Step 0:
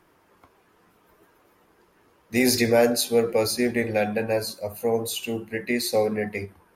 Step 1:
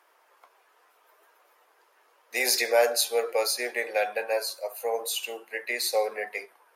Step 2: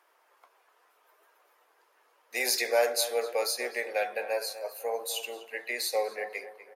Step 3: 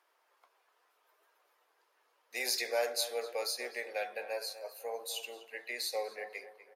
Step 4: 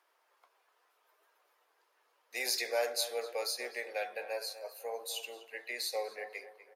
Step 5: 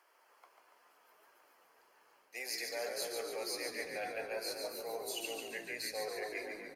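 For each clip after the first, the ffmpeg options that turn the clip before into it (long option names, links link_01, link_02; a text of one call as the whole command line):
ffmpeg -i in.wav -af "highpass=frequency=530:width=0.5412,highpass=frequency=530:width=1.3066" out.wav
ffmpeg -i in.wav -filter_complex "[0:a]asplit=2[link_01][link_02];[link_02]adelay=247,lowpass=frequency=2300:poles=1,volume=-12.5dB,asplit=2[link_03][link_04];[link_04]adelay=247,lowpass=frequency=2300:poles=1,volume=0.43,asplit=2[link_05][link_06];[link_06]adelay=247,lowpass=frequency=2300:poles=1,volume=0.43,asplit=2[link_07][link_08];[link_08]adelay=247,lowpass=frequency=2300:poles=1,volume=0.43[link_09];[link_01][link_03][link_05][link_07][link_09]amix=inputs=5:normalize=0,volume=-3.5dB" out.wav
ffmpeg -i in.wav -af "equalizer=frequency=4200:width_type=o:width=1.2:gain=4,volume=-7.5dB" out.wav
ffmpeg -i in.wav -af "highpass=220" out.wav
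ffmpeg -i in.wav -filter_complex "[0:a]bandreject=frequency=3700:width=5.2,areverse,acompressor=threshold=-43dB:ratio=6,areverse,asplit=9[link_01][link_02][link_03][link_04][link_05][link_06][link_07][link_08][link_09];[link_02]adelay=142,afreqshift=-57,volume=-5dB[link_10];[link_03]adelay=284,afreqshift=-114,volume=-9.7dB[link_11];[link_04]adelay=426,afreqshift=-171,volume=-14.5dB[link_12];[link_05]adelay=568,afreqshift=-228,volume=-19.2dB[link_13];[link_06]adelay=710,afreqshift=-285,volume=-23.9dB[link_14];[link_07]adelay=852,afreqshift=-342,volume=-28.7dB[link_15];[link_08]adelay=994,afreqshift=-399,volume=-33.4dB[link_16];[link_09]adelay=1136,afreqshift=-456,volume=-38.1dB[link_17];[link_01][link_10][link_11][link_12][link_13][link_14][link_15][link_16][link_17]amix=inputs=9:normalize=0,volume=4.5dB" out.wav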